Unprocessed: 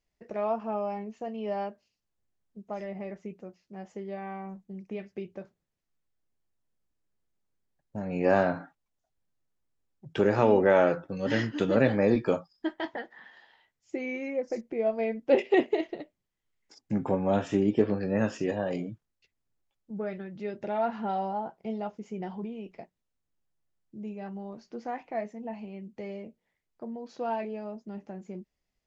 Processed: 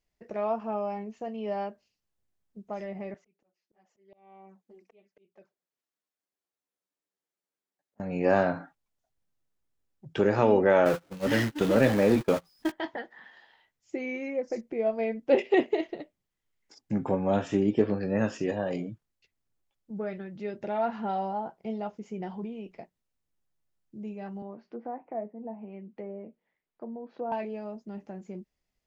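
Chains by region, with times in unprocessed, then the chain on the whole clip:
3.14–8.00 s: high-pass 330 Hz + touch-sensitive flanger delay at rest 10.7 ms, full sweep at -36.5 dBFS + slow attack 673 ms
10.85–12.72 s: jump at every zero crossing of -30 dBFS + gate -29 dBFS, range -29 dB
24.42–27.32 s: three-band isolator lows -13 dB, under 160 Hz, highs -16 dB, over 3.6 kHz + low-pass that closes with the level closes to 780 Hz, closed at -34.5 dBFS
whole clip: none

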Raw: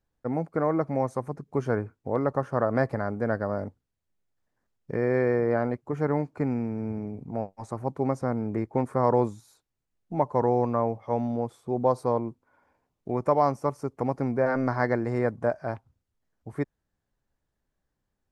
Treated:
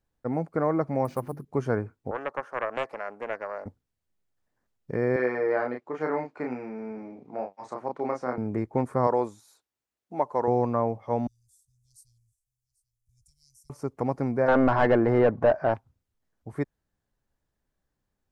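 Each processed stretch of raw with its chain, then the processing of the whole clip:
1.05–1.45 s: hum notches 50/100/150/200/250/300/350 Hz + careless resampling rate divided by 4×, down none, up hold + loudspeaker Doppler distortion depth 0.17 ms
2.11–3.66 s: high-pass 650 Hz + treble shelf 2.2 kHz -7 dB + loudspeaker Doppler distortion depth 0.3 ms
5.16–8.38 s: band-pass 300–4100 Hz + tilt shelf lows -3.5 dB, about 1.1 kHz + doubling 32 ms -3 dB
9.07–10.48 s: high-pass 90 Hz + peaking EQ 140 Hz -12.5 dB 1.7 oct
11.27–13.70 s: inverse Chebyshev band-stop 260–1400 Hz, stop band 80 dB + delay 789 ms -20 dB
14.48–15.74 s: overdrive pedal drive 21 dB, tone 1.1 kHz, clips at -9 dBFS + low-pass 3.4 kHz 6 dB/octave + bass shelf 90 Hz +10.5 dB
whole clip: none

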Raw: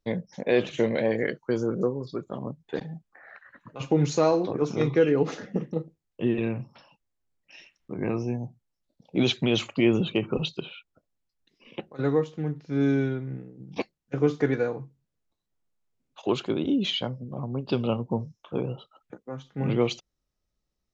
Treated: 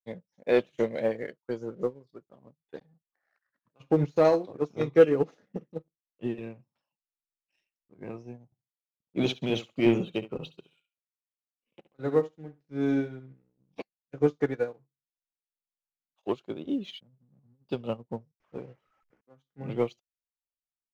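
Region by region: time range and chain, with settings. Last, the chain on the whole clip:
3.82–4.25 s: companding laws mixed up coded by mu + distance through air 150 m
8.45–13.33 s: expander -50 dBFS + feedback delay 69 ms, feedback 21%, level -7 dB
17.00–17.69 s: band-pass filter 160 Hz, Q 1.7 + compressor with a negative ratio -36 dBFS, ratio -0.5
18.40–19.21 s: one-bit delta coder 32 kbps, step -39 dBFS + resonant high shelf 3 kHz -12 dB, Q 1.5
whole clip: dynamic bell 590 Hz, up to +4 dB, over -38 dBFS, Q 1.8; waveshaping leveller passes 1; upward expansion 2.5:1, over -31 dBFS

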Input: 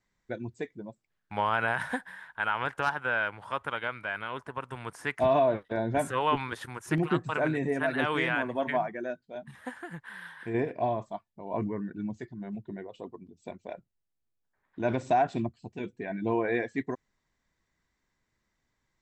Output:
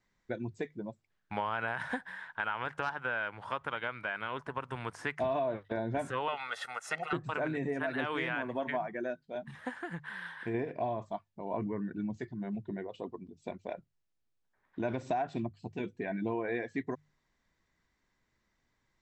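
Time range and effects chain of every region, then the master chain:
6.28–7.13 s: high-pass 580 Hz + comb 1.5 ms, depth 95%
whole clip: low-pass 6.7 kHz 12 dB/octave; hum notches 50/100/150 Hz; compression 3:1, threshold -34 dBFS; trim +1.5 dB

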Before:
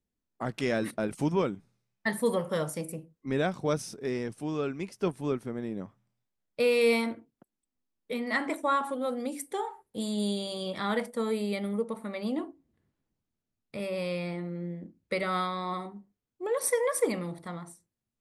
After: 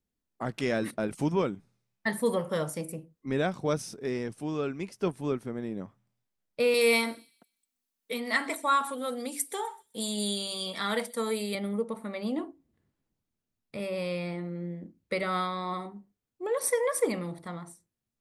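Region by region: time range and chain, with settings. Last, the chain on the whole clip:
6.74–11.55 s: tilt EQ +2.5 dB/octave + comb 4.4 ms, depth 36% + feedback echo behind a high-pass 127 ms, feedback 33%, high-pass 4.6 kHz, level -16.5 dB
whole clip: none

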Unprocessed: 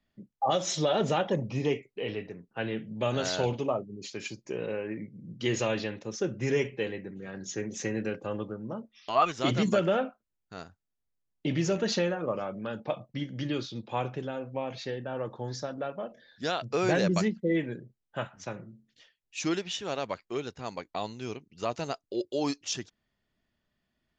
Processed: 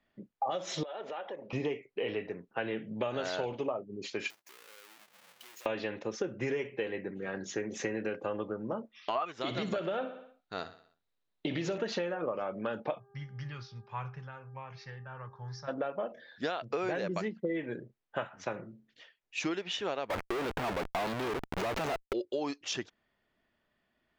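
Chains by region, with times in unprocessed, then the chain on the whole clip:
0.83–1.53 s: band-pass 440–4000 Hz + compression 4:1, threshold -45 dBFS
4.30–5.66 s: square wave that keeps the level + compression 4:1, threshold -42 dBFS + differentiator
9.41–11.78 s: peaking EQ 3.9 kHz +11.5 dB 0.34 oct + compression 2:1, threshold -28 dBFS + feedback delay 62 ms, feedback 52%, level -14.5 dB
12.98–15.67 s: FFT filter 140 Hz 0 dB, 290 Hz -29 dB, 710 Hz -21 dB, 1 kHz -8 dB, 2 kHz -10 dB, 3.6 kHz -18 dB, 5.4 kHz -1 dB, 8.8 kHz -27 dB + mains buzz 400 Hz, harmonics 4, -67 dBFS -9 dB/octave
20.10–22.13 s: waveshaping leveller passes 2 + Schmitt trigger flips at -46.5 dBFS
whole clip: tone controls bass -10 dB, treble -13 dB; compression 10:1, threshold -36 dBFS; trim +6 dB

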